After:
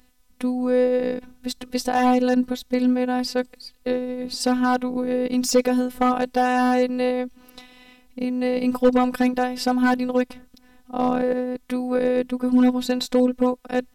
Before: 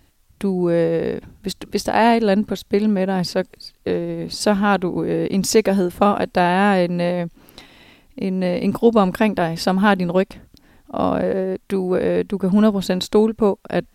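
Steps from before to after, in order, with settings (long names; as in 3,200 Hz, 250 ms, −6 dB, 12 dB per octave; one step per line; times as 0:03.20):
phases set to zero 250 Hz
gain into a clipping stage and back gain 9.5 dB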